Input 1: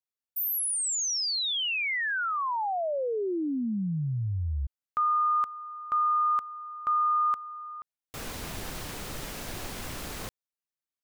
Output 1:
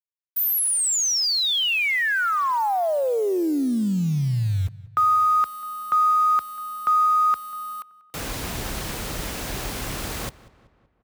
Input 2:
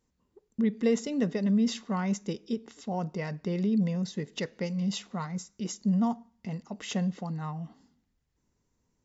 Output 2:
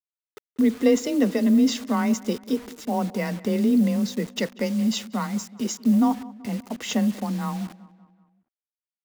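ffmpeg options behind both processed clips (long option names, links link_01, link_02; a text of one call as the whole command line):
ffmpeg -i in.wav -filter_complex "[0:a]acontrast=81,afreqshift=25,acrusher=bits=6:mix=0:aa=0.000001,asplit=2[link_01][link_02];[link_02]adelay=190,lowpass=frequency=3000:poles=1,volume=-19.5dB,asplit=2[link_03][link_04];[link_04]adelay=190,lowpass=frequency=3000:poles=1,volume=0.54,asplit=2[link_05][link_06];[link_06]adelay=190,lowpass=frequency=3000:poles=1,volume=0.54,asplit=2[link_07][link_08];[link_08]adelay=190,lowpass=frequency=3000:poles=1,volume=0.54[link_09];[link_03][link_05][link_07][link_09]amix=inputs=4:normalize=0[link_10];[link_01][link_10]amix=inputs=2:normalize=0" out.wav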